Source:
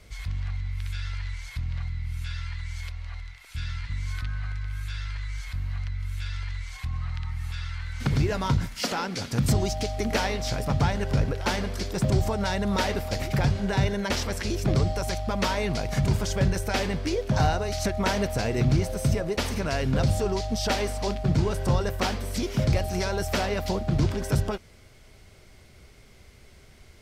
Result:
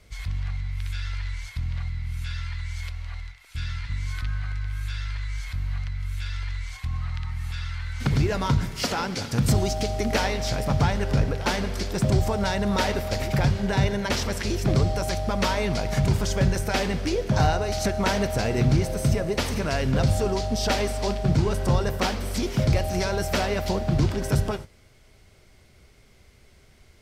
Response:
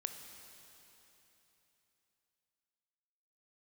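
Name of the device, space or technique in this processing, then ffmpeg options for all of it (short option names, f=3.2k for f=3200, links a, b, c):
keyed gated reverb: -filter_complex "[0:a]asplit=3[a][b][c];[1:a]atrim=start_sample=2205[d];[b][d]afir=irnorm=-1:irlink=0[e];[c]apad=whole_len=1191155[f];[e][f]sidechaingate=range=-33dB:threshold=-38dB:ratio=16:detection=peak,volume=-1dB[g];[a][g]amix=inputs=2:normalize=0,volume=-3dB"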